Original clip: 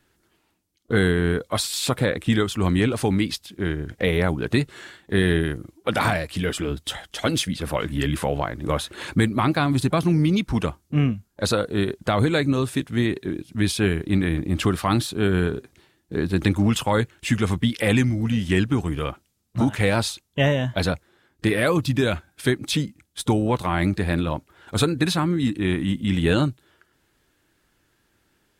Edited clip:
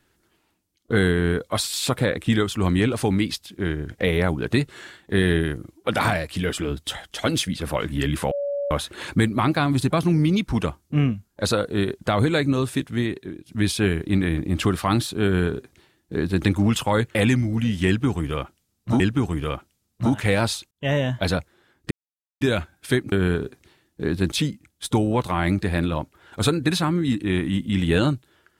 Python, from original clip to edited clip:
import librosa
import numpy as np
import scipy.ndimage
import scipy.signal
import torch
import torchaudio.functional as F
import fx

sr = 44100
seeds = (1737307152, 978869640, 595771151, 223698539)

y = fx.edit(x, sr, fx.bleep(start_s=8.31, length_s=0.4, hz=569.0, db=-23.0),
    fx.fade_out_to(start_s=12.82, length_s=0.64, floor_db=-11.0),
    fx.duplicate(start_s=15.24, length_s=1.2, to_s=22.67),
    fx.cut(start_s=17.15, length_s=0.68),
    fx.repeat(start_s=18.55, length_s=1.13, count=2),
    fx.fade_in_span(start_s=20.26, length_s=0.28),
    fx.silence(start_s=21.46, length_s=0.5), tone=tone)